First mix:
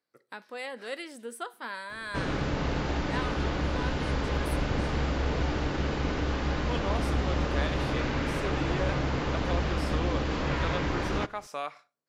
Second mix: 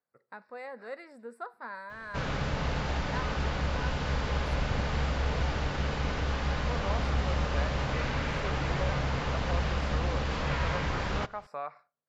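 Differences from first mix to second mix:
speech: add moving average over 14 samples
master: add parametric band 320 Hz −10.5 dB 0.72 octaves

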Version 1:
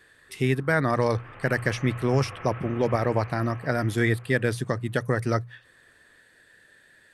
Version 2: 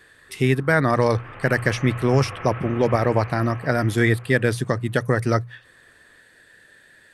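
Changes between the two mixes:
speech +4.5 dB
background +5.5 dB

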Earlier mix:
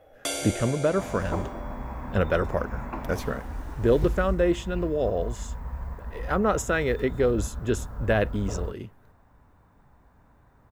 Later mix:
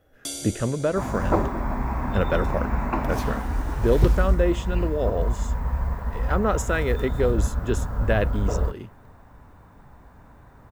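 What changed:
first sound: add flat-topped bell 1,100 Hz −12.5 dB 3 octaves
second sound +9.0 dB

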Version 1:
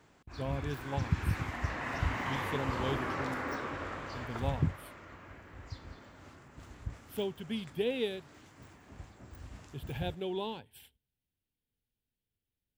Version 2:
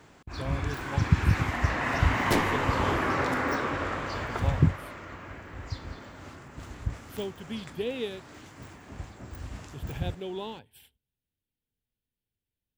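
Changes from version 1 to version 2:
first sound +8.5 dB
second sound: unmuted

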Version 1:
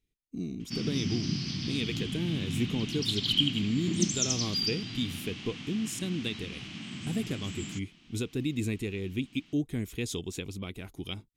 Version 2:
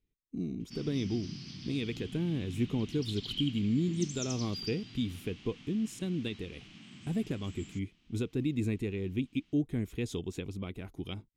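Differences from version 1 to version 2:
speech: add high-shelf EQ 2,500 Hz −10.5 dB
background −11.0 dB

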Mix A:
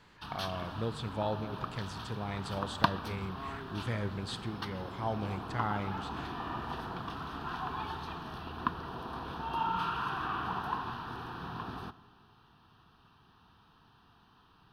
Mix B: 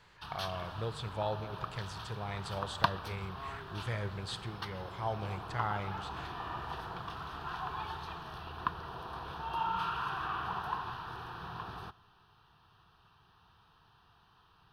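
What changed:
background: send −7.0 dB
master: add parametric band 250 Hz −13 dB 0.68 octaves

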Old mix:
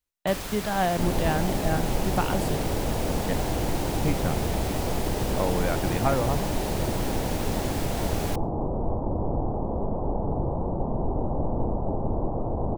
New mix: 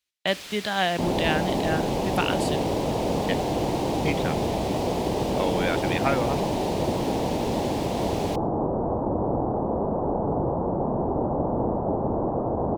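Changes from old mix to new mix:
first sound −10.0 dB
second sound +5.5 dB
master: add meter weighting curve D

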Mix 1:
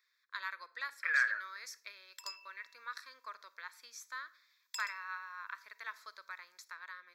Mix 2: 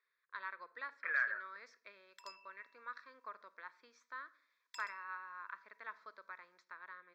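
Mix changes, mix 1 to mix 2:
speech: add high-frequency loss of the air 160 metres
master: add spectral tilt −4.5 dB per octave

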